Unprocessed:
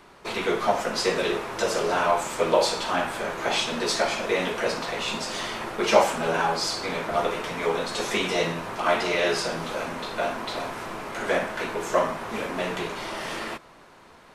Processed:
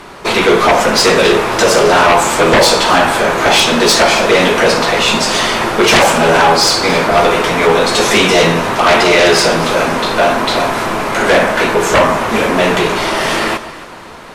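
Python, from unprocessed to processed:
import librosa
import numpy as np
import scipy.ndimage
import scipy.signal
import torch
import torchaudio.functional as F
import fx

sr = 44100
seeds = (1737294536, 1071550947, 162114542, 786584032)

y = fx.fold_sine(x, sr, drive_db=15, ceiling_db=-3.5)
y = fx.echo_alternate(y, sr, ms=135, hz=1400.0, feedback_pct=60, wet_db=-12.0)
y = y * 10.0 ** (-1.0 / 20.0)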